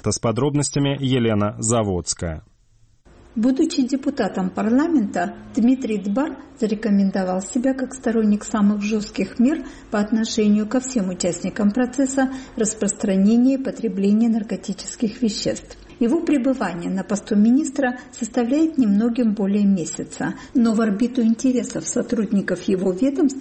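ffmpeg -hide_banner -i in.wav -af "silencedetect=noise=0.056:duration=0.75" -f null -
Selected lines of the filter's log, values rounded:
silence_start: 2.38
silence_end: 3.37 | silence_duration: 0.98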